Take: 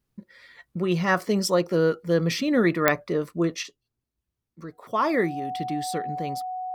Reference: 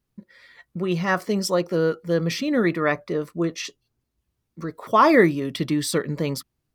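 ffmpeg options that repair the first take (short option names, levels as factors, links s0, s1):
-af "adeclick=t=4,bandreject=f=740:w=30,asetnsamples=n=441:p=0,asendcmd='3.63 volume volume 8dB',volume=1"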